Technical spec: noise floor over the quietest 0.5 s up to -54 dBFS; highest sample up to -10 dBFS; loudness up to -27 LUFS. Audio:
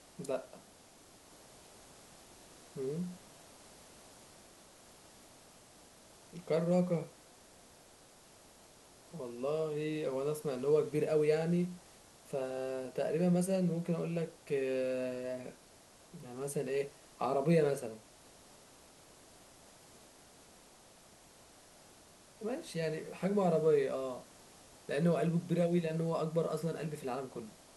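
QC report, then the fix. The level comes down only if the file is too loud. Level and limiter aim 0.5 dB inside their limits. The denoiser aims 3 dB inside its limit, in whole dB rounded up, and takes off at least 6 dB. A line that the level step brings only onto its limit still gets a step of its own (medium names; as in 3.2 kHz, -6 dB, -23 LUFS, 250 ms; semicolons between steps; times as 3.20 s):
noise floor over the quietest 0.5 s -60 dBFS: pass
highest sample -18.5 dBFS: pass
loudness -35.0 LUFS: pass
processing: none needed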